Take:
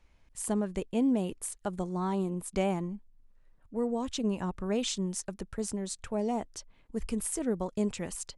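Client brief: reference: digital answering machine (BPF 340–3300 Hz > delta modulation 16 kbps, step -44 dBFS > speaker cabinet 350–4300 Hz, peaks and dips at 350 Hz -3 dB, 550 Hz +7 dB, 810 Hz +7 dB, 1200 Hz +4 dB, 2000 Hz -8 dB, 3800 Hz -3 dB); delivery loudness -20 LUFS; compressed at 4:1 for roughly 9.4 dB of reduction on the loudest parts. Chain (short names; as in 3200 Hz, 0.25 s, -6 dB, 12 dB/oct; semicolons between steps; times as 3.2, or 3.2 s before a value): compressor 4:1, threshold -35 dBFS; BPF 340–3300 Hz; delta modulation 16 kbps, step -44 dBFS; speaker cabinet 350–4300 Hz, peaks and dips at 350 Hz -3 dB, 550 Hz +7 dB, 810 Hz +7 dB, 1200 Hz +4 dB, 2000 Hz -8 dB, 3800 Hz -3 dB; gain +23 dB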